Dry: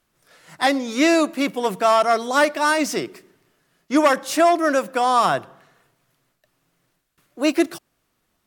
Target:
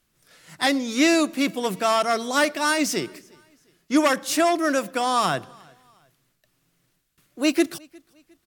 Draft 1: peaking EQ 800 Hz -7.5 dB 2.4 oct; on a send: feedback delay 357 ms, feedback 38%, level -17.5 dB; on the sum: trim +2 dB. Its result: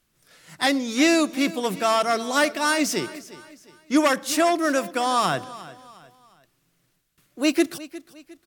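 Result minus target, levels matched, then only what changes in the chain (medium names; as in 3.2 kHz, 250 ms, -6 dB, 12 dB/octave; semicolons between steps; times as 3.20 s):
echo-to-direct +10 dB
change: feedback delay 357 ms, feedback 38%, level -27.5 dB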